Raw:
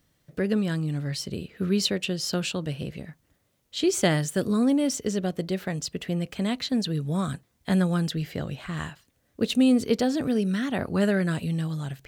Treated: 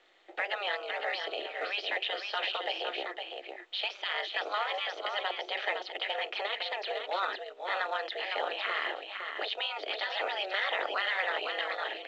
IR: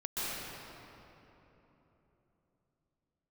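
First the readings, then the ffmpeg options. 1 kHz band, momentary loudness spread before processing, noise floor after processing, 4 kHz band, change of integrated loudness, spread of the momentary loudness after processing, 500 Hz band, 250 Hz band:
+4.0 dB, 11 LU, −49 dBFS, +0.5 dB, −6.5 dB, 5 LU, −7.0 dB, −31.0 dB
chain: -filter_complex "[0:a]afftfilt=real='re*lt(hypot(re,im),0.158)':imag='im*lt(hypot(re,im),0.158)':win_size=1024:overlap=0.75,tiltshelf=frequency=1500:gain=-3.5,aecho=1:1:1.7:0.64,asplit=2[link_01][link_02];[link_02]acompressor=threshold=-40dB:ratio=16,volume=-2dB[link_03];[link_01][link_03]amix=inputs=2:normalize=0,alimiter=limit=-23.5dB:level=0:latency=1:release=29,aeval=exprs='val(0)*sin(2*PI*100*n/s)':channel_layout=same,asoftclip=type=hard:threshold=-26.5dB,asplit=2[link_04][link_05];[link_05]aecho=0:1:509:0.501[link_06];[link_04][link_06]amix=inputs=2:normalize=0,highpass=frequency=310:width_type=q:width=0.5412,highpass=frequency=310:width_type=q:width=1.307,lowpass=frequency=3500:width_type=q:width=0.5176,lowpass=frequency=3500:width_type=q:width=0.7071,lowpass=frequency=3500:width_type=q:width=1.932,afreqshift=97,volume=6dB" -ar 16000 -c:a pcm_mulaw

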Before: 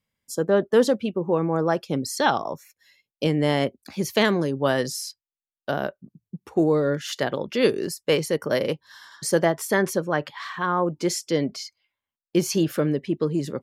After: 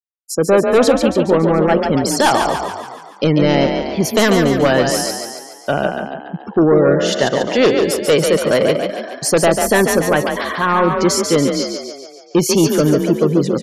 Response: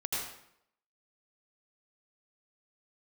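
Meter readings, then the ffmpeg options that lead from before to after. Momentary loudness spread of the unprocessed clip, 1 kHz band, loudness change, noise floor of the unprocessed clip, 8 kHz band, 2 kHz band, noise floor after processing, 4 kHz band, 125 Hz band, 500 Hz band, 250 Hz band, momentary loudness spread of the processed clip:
11 LU, +9.5 dB, +9.0 dB, below −85 dBFS, +11.0 dB, +9.0 dB, −39 dBFS, +9.5 dB, +8.5 dB, +9.5 dB, +9.0 dB, 11 LU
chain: -filter_complex "[0:a]aeval=exprs='0.447*sin(PI/2*2*val(0)/0.447)':channel_layout=same,afftfilt=real='re*gte(hypot(re,im),0.0316)':imag='im*gte(hypot(re,im),0.0316)':win_size=1024:overlap=0.75,asplit=8[link_01][link_02][link_03][link_04][link_05][link_06][link_07][link_08];[link_02]adelay=142,afreqshift=32,volume=-5.5dB[link_09];[link_03]adelay=284,afreqshift=64,volume=-10.5dB[link_10];[link_04]adelay=426,afreqshift=96,volume=-15.6dB[link_11];[link_05]adelay=568,afreqshift=128,volume=-20.6dB[link_12];[link_06]adelay=710,afreqshift=160,volume=-25.6dB[link_13];[link_07]adelay=852,afreqshift=192,volume=-30.7dB[link_14];[link_08]adelay=994,afreqshift=224,volume=-35.7dB[link_15];[link_01][link_09][link_10][link_11][link_12][link_13][link_14][link_15]amix=inputs=8:normalize=0"

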